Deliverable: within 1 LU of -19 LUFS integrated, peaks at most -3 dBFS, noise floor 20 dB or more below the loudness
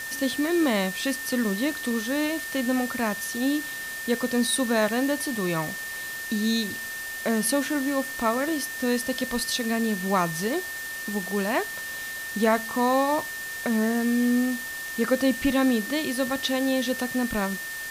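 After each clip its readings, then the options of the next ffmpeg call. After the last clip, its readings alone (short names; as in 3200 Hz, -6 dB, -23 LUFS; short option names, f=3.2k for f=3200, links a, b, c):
steady tone 1800 Hz; tone level -33 dBFS; noise floor -35 dBFS; noise floor target -46 dBFS; loudness -26.0 LUFS; peak -8.5 dBFS; loudness target -19.0 LUFS
-> -af "bandreject=f=1.8k:w=30"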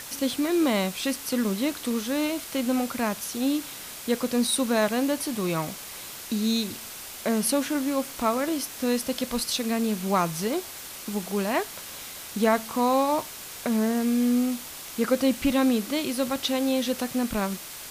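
steady tone none; noise floor -40 dBFS; noise floor target -47 dBFS
-> -af "afftdn=nr=7:nf=-40"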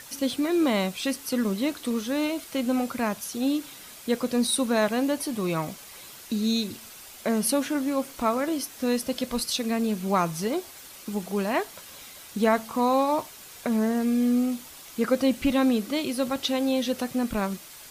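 noise floor -46 dBFS; noise floor target -47 dBFS
-> -af "afftdn=nr=6:nf=-46"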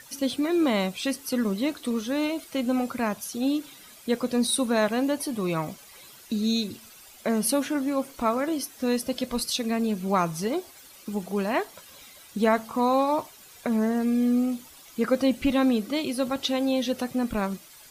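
noise floor -50 dBFS; loudness -26.5 LUFS; peak -9.5 dBFS; loudness target -19.0 LUFS
-> -af "volume=7.5dB,alimiter=limit=-3dB:level=0:latency=1"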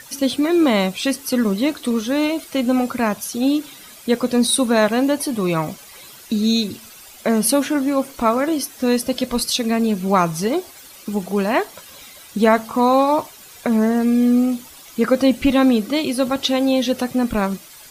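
loudness -19.0 LUFS; peak -3.0 dBFS; noise floor -42 dBFS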